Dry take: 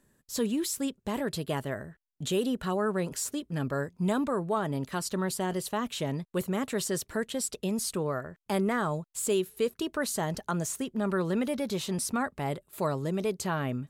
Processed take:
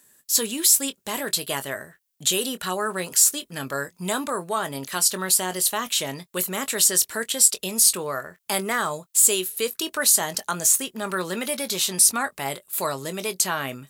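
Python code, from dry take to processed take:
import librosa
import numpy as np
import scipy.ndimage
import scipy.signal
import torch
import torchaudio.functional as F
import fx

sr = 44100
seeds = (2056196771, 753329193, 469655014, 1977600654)

y = fx.tilt_eq(x, sr, slope=4.0)
y = fx.doubler(y, sr, ms=22.0, db=-12.0)
y = F.gain(torch.from_numpy(y), 5.0).numpy()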